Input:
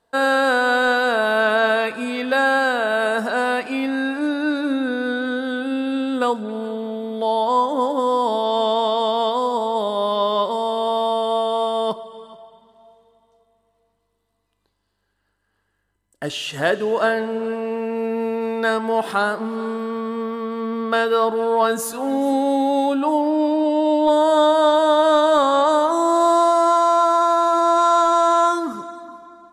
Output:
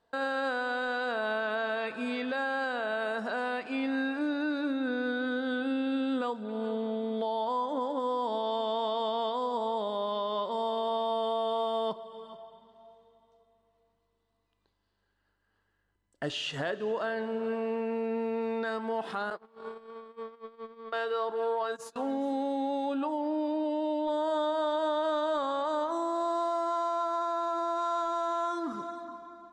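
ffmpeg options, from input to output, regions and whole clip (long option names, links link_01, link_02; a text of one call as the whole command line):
ffmpeg -i in.wav -filter_complex "[0:a]asettb=1/sr,asplit=3[link_01][link_02][link_03];[link_01]atrim=end=19.304[link_04];[link_02]atrim=start=19.3:end=21.96,asetpts=PTS-STARTPTS,afade=type=in:duration=0.004:curve=qsin,afade=type=out:start_time=2.656:duration=0.004:curve=qsin,equalizer=frequency=230:width=3.9:gain=-12,agate=range=-25dB:threshold=-27dB:ratio=16:release=100:detection=peak[link_05];[link_03]atrim=start=21.956[link_06];[link_04][link_05]acrossfade=duration=0.004:curve1=hsin:curve2=qsin[link_07];[link_07][link_06]acrossfade=duration=0.004:curve1=qsin:curve2=hsin,lowpass=5700,alimiter=limit=-18dB:level=0:latency=1:release=397,volume=-5dB" out.wav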